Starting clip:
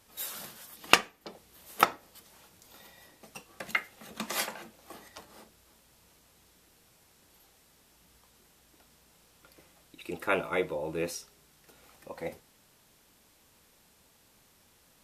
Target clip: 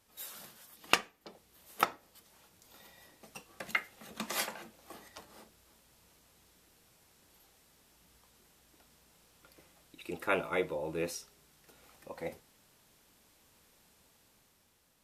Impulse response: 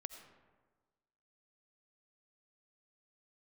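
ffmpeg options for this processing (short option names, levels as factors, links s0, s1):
-af "dynaudnorm=f=120:g=13:m=1.78,volume=0.422"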